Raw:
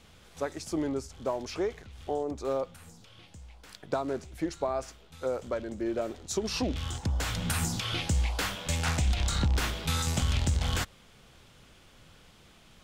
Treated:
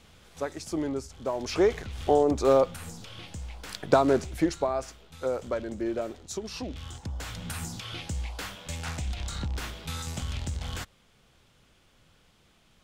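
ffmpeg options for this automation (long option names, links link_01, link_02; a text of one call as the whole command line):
ffmpeg -i in.wav -af "volume=10dB,afade=type=in:start_time=1.32:duration=0.43:silence=0.334965,afade=type=out:start_time=4.18:duration=0.52:silence=0.398107,afade=type=out:start_time=5.76:duration=0.73:silence=0.398107" out.wav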